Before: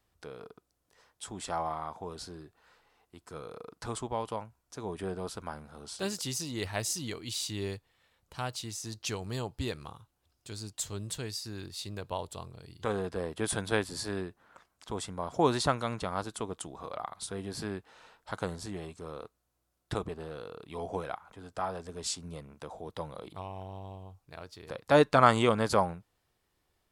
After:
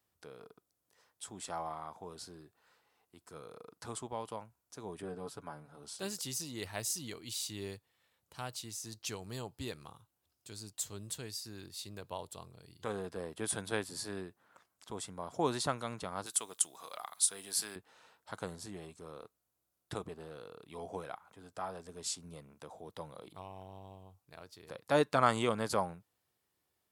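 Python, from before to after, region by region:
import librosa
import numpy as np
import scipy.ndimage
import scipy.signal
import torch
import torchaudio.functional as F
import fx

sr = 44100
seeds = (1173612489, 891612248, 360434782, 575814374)

y = fx.chain(x, sr, fx.high_shelf(hz=2100.0, db=-7.0),
    fx.comb(ms=7.0, depth=0.65), at=(5.02, 5.83))
y = fx.chain(y, sr, fx.quant_float(bits=8),
    fx.tilt_eq(slope=4.5), at=(16.26, 17.76))
y = scipy.signal.sosfilt(scipy.signal.butter(2, 95.0, 'highpass', fs=sr, output='sos'), y)
y = fx.high_shelf(y, sr, hz=8800.0, db=10.0)
y = y * librosa.db_to_amplitude(-6.5)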